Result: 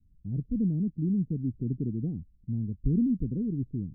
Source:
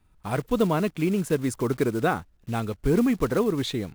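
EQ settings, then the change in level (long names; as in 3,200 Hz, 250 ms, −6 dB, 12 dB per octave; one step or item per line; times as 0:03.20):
inverse Chebyshev low-pass filter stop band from 1,100 Hz, stop band 70 dB
0.0 dB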